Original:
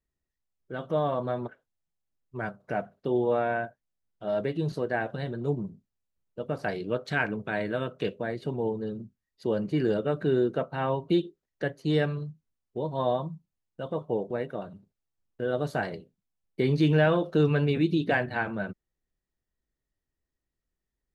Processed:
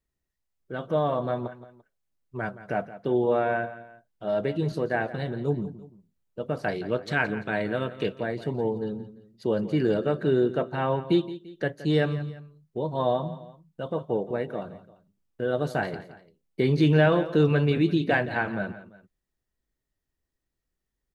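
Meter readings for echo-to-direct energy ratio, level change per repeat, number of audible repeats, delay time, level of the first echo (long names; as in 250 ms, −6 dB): −14.5 dB, −7.5 dB, 2, 171 ms, −15.0 dB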